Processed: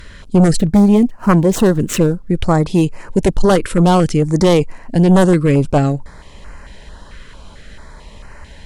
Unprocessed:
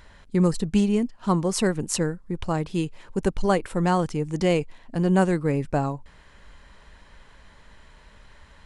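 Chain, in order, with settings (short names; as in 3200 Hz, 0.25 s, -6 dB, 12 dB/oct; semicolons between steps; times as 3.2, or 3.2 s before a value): 0.58–2.31 median filter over 9 samples; sine folder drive 9 dB, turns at -7 dBFS; stepped notch 4.5 Hz 800–3500 Hz; gain +1.5 dB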